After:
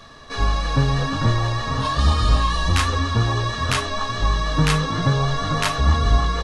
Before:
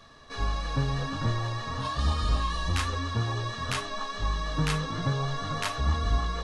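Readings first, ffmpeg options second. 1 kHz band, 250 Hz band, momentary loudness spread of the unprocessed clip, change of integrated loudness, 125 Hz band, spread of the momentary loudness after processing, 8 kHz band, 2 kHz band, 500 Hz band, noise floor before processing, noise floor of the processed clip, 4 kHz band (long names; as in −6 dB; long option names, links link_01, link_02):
+9.0 dB, +9.0 dB, 5 LU, +9.0 dB, +9.0 dB, 4 LU, +9.0 dB, +9.0 dB, +9.0 dB, −39 dBFS, −32 dBFS, +9.0 dB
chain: -filter_complex "[0:a]asplit=2[link_01][link_02];[link_02]adelay=932.9,volume=-14dB,highshelf=frequency=4000:gain=-21[link_03];[link_01][link_03]amix=inputs=2:normalize=0,volume=9dB"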